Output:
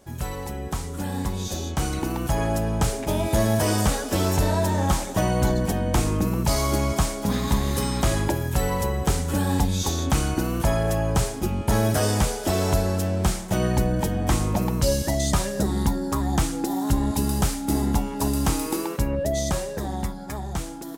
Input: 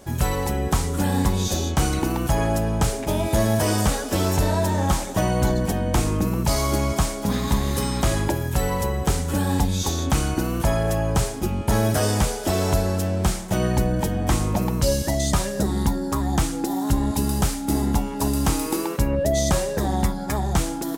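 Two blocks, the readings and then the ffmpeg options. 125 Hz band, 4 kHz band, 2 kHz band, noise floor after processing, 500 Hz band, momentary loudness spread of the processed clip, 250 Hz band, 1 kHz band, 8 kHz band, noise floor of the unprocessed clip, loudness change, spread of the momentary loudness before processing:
−1.5 dB, −1.5 dB, −1.5 dB, −33 dBFS, −1.5 dB, 7 LU, −1.5 dB, −1.5 dB, −1.5 dB, −30 dBFS, −1.5 dB, 3 LU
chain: -af "dynaudnorm=framelen=240:gausssize=17:maxgain=9dB,volume=-8dB"

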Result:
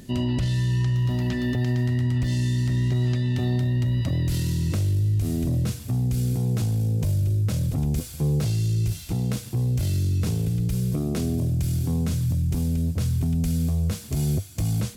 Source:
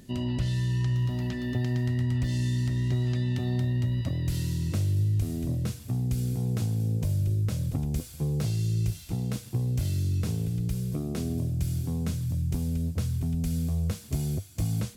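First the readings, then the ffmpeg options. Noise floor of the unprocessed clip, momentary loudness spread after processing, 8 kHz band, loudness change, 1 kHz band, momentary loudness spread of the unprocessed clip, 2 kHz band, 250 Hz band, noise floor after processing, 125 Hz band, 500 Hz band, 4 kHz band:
−45 dBFS, 3 LU, +5.0 dB, +4.5 dB, +4.5 dB, 4 LU, +4.5 dB, +4.5 dB, −38 dBFS, +4.5 dB, +5.0 dB, +5.0 dB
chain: -af "alimiter=limit=-24dB:level=0:latency=1:release=10,volume=6.5dB"

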